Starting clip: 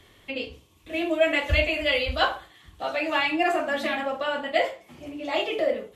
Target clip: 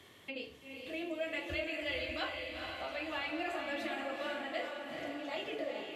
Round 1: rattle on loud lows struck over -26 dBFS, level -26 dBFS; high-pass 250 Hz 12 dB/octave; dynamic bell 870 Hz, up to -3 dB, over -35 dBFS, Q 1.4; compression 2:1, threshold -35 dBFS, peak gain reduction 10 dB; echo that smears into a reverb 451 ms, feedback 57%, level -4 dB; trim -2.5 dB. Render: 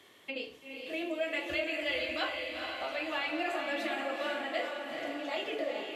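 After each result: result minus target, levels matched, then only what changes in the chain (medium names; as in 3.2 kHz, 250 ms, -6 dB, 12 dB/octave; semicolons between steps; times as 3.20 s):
125 Hz band -10.5 dB; compression: peak gain reduction -4.5 dB
change: high-pass 120 Hz 12 dB/octave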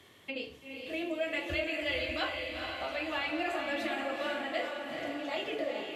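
compression: peak gain reduction -4 dB
change: compression 2:1, threshold -43.5 dBFS, peak gain reduction 14.5 dB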